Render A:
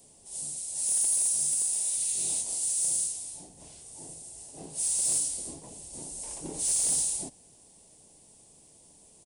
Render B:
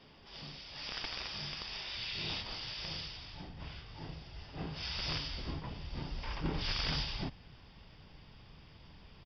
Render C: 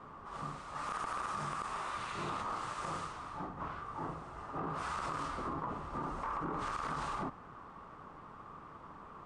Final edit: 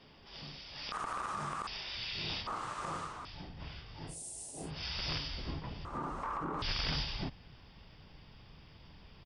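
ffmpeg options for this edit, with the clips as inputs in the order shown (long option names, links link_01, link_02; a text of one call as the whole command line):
ffmpeg -i take0.wav -i take1.wav -i take2.wav -filter_complex "[2:a]asplit=3[link_01][link_02][link_03];[1:a]asplit=5[link_04][link_05][link_06][link_07][link_08];[link_04]atrim=end=0.922[link_09];[link_01]atrim=start=0.918:end=1.672[link_10];[link_05]atrim=start=1.668:end=2.472[link_11];[link_02]atrim=start=2.468:end=3.252[link_12];[link_06]atrim=start=3.248:end=4.17[link_13];[0:a]atrim=start=4.07:end=4.71[link_14];[link_07]atrim=start=4.61:end=5.852[link_15];[link_03]atrim=start=5.848:end=6.622[link_16];[link_08]atrim=start=6.618[link_17];[link_09][link_10]acrossfade=duration=0.004:curve1=hsin:curve2=hsin[link_18];[link_18][link_11]acrossfade=duration=0.004:curve1=hsin:curve2=hsin[link_19];[link_19][link_12]acrossfade=duration=0.004:curve1=hsin:curve2=hsin[link_20];[link_20][link_13]acrossfade=duration=0.004:curve1=hsin:curve2=hsin[link_21];[link_21][link_14]acrossfade=duration=0.1:curve1=tri:curve2=tri[link_22];[link_22][link_15]acrossfade=duration=0.1:curve1=tri:curve2=tri[link_23];[link_23][link_16]acrossfade=duration=0.004:curve1=hsin:curve2=hsin[link_24];[link_24][link_17]acrossfade=duration=0.004:curve1=hsin:curve2=hsin" out.wav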